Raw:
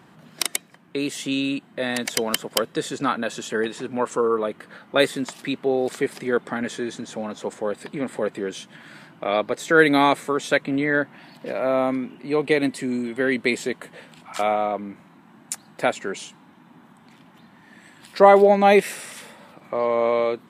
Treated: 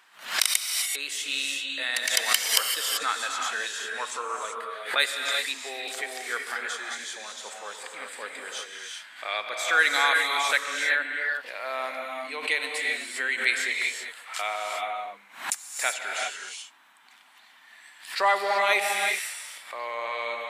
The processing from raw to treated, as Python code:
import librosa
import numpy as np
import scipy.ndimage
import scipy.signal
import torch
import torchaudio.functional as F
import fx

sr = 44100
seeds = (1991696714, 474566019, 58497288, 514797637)

y = scipy.signal.sosfilt(scipy.signal.butter(2, 1500.0, 'highpass', fs=sr, output='sos'), x)
y = fx.rev_gated(y, sr, seeds[0], gate_ms=410, shape='rising', drr_db=1.0)
y = fx.pre_swell(y, sr, db_per_s=130.0)
y = F.gain(torch.from_numpy(y), 1.0).numpy()